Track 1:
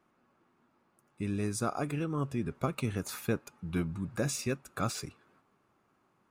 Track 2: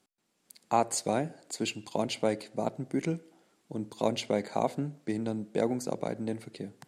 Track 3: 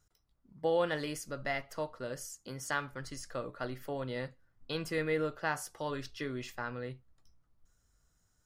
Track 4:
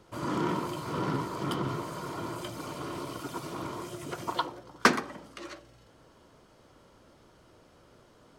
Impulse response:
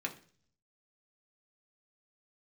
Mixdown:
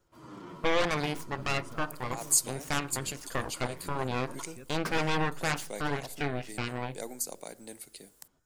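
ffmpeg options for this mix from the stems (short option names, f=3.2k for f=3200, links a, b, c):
-filter_complex "[0:a]adelay=100,volume=-17dB[a];[1:a]crystalizer=i=1:c=0,aemphasis=mode=production:type=riaa,adelay=1400,volume=-8.5dB[b];[2:a]equalizer=f=5.5k:w=0.55:g=-6,aeval=exprs='0.106*(cos(1*acos(clip(val(0)/0.106,-1,1)))-cos(1*PI/2))+0.0473*(cos(8*acos(clip(val(0)/0.106,-1,1)))-cos(8*PI/2))':c=same,volume=-2dB,asplit=3[c][d][e];[d]volume=-11.5dB[f];[3:a]asplit=2[g][h];[h]adelay=8.6,afreqshift=-1.8[i];[g][i]amix=inputs=2:normalize=1,volume=-13dB[j];[e]apad=whole_len=364989[k];[b][k]sidechaincompress=threshold=-42dB:ratio=8:attack=43:release=157[l];[4:a]atrim=start_sample=2205[m];[f][m]afir=irnorm=-1:irlink=0[n];[a][l][c][j][n]amix=inputs=5:normalize=0"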